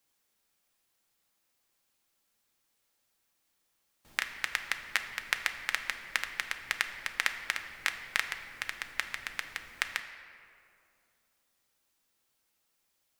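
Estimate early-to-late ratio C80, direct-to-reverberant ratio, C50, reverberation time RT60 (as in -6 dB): 9.5 dB, 5.5 dB, 8.5 dB, 2.6 s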